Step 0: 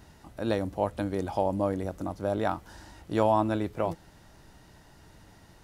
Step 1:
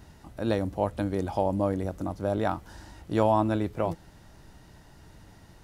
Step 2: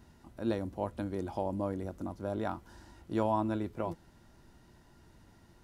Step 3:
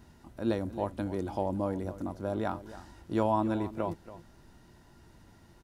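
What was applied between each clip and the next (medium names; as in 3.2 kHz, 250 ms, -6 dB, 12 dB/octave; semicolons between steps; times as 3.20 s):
bass shelf 240 Hz +4 dB
small resonant body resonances 240/350/990/1400 Hz, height 8 dB, ringing for 100 ms; trim -8.5 dB
delay 280 ms -15 dB; trim +2.5 dB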